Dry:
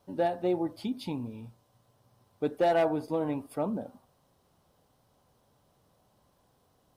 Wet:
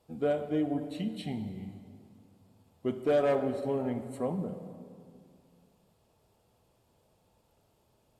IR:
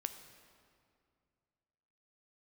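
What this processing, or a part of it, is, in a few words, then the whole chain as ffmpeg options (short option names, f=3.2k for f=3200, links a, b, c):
slowed and reverbed: -filter_complex "[0:a]asetrate=37485,aresample=44100[a];[1:a]atrim=start_sample=2205[b];[a][b]afir=irnorm=-1:irlink=0"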